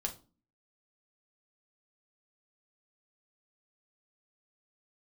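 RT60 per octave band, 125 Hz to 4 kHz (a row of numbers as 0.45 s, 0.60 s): 0.50 s, 0.65 s, 0.35 s, 0.35 s, 0.25 s, 0.25 s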